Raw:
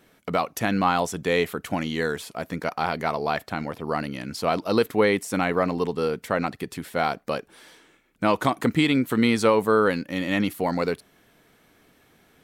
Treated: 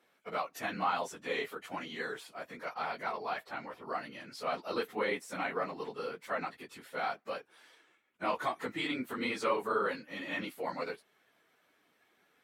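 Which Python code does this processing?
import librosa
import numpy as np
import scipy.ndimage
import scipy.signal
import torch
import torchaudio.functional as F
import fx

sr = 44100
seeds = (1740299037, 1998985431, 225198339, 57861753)

y = fx.phase_scramble(x, sr, seeds[0], window_ms=50)
y = fx.highpass(y, sr, hz=950.0, slope=6)
y = fx.high_shelf(y, sr, hz=4000.0, db=-10.0)
y = y * librosa.db_to_amplitude(-6.0)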